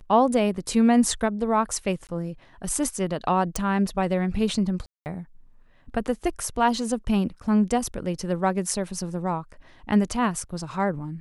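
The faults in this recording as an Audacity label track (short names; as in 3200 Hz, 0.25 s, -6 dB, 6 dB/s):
2.070000	2.090000	gap 18 ms
3.560000	3.560000	pop
4.860000	5.060000	gap 0.199 s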